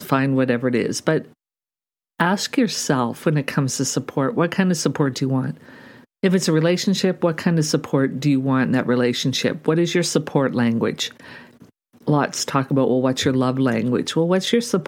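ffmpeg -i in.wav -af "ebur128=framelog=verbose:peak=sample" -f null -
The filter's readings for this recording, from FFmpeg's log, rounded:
Integrated loudness:
  I:         -20.2 LUFS
  Threshold: -30.7 LUFS
Loudness range:
  LRA:         2.4 LU
  Threshold: -40.9 LUFS
  LRA low:   -22.0 LUFS
  LRA high:  -19.7 LUFS
Sample peak:
  Peak:       -2.3 dBFS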